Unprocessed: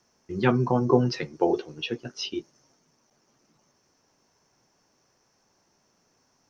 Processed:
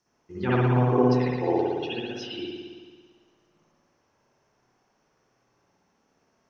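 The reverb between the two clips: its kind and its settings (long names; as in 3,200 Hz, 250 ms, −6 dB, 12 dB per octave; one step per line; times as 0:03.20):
spring reverb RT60 1.6 s, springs 56 ms, chirp 65 ms, DRR −9 dB
level −9 dB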